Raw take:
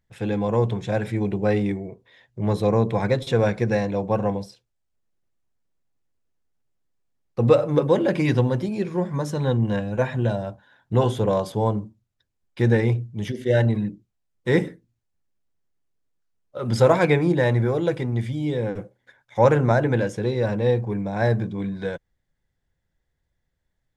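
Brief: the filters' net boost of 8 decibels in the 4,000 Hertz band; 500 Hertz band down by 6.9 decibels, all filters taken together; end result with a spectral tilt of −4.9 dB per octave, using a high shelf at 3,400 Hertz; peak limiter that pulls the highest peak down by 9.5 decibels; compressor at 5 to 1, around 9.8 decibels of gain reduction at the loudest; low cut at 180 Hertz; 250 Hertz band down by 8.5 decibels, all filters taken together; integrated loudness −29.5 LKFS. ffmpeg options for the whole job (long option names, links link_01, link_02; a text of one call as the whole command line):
ffmpeg -i in.wav -af "highpass=180,equalizer=frequency=250:width_type=o:gain=-8,equalizer=frequency=500:width_type=o:gain=-6,highshelf=frequency=3400:gain=6,equalizer=frequency=4000:width_type=o:gain=5.5,acompressor=threshold=-27dB:ratio=5,volume=6.5dB,alimiter=limit=-19dB:level=0:latency=1" out.wav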